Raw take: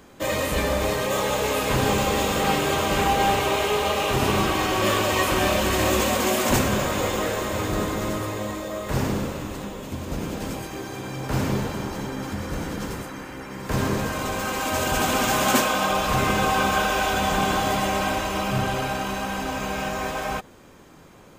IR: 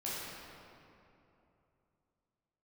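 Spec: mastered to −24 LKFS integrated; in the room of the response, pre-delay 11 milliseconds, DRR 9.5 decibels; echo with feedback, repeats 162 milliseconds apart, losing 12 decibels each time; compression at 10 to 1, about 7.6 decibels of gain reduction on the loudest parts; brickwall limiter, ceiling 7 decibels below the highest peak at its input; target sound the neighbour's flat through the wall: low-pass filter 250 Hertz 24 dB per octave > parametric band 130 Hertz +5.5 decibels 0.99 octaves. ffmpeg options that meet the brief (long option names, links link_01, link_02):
-filter_complex "[0:a]acompressor=threshold=-24dB:ratio=10,alimiter=limit=-21.5dB:level=0:latency=1,aecho=1:1:162|324|486:0.251|0.0628|0.0157,asplit=2[link_01][link_02];[1:a]atrim=start_sample=2205,adelay=11[link_03];[link_02][link_03]afir=irnorm=-1:irlink=0,volume=-13dB[link_04];[link_01][link_04]amix=inputs=2:normalize=0,lowpass=frequency=250:width=0.5412,lowpass=frequency=250:width=1.3066,equalizer=frequency=130:width_type=o:width=0.99:gain=5.5,volume=11dB"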